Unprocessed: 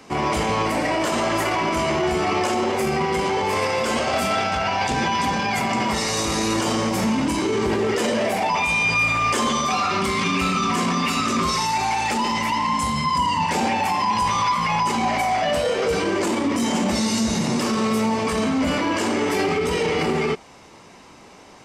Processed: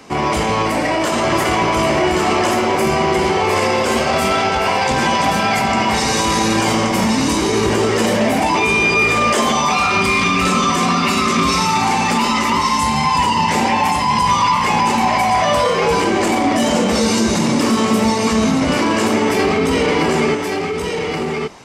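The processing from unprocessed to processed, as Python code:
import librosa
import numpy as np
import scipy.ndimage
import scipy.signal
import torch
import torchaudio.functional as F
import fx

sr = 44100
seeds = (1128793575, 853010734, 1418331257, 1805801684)

p1 = fx.lowpass(x, sr, hz=4100.0, slope=12, at=(18.11, 18.76))
p2 = p1 + fx.echo_single(p1, sr, ms=1126, db=-4.0, dry=0)
y = F.gain(torch.from_numpy(p2), 4.5).numpy()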